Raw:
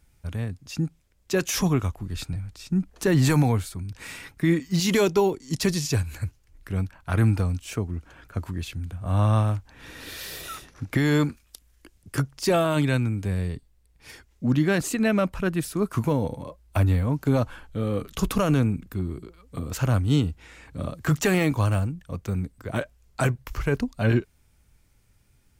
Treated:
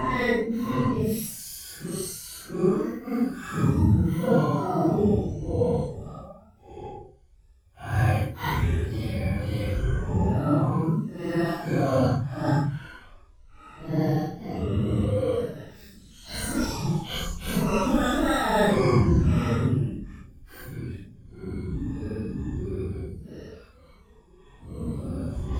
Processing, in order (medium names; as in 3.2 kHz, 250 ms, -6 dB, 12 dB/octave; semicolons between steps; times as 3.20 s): rippled EQ curve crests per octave 1.9, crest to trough 12 dB; granulator, pitch spread up and down by 7 st; Paulstretch 6×, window 0.05 s, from 15.40 s